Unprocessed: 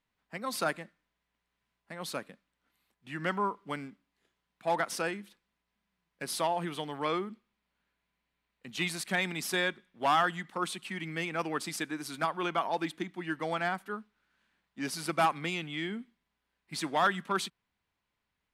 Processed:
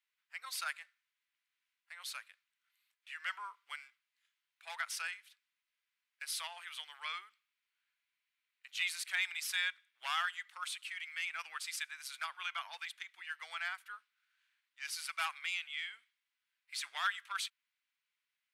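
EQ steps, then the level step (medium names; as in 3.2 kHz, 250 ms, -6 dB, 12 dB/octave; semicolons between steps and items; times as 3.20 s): ladder high-pass 1.4 kHz, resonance 30%; peaking EQ 1.8 kHz -4.5 dB 0.29 oct; +3.5 dB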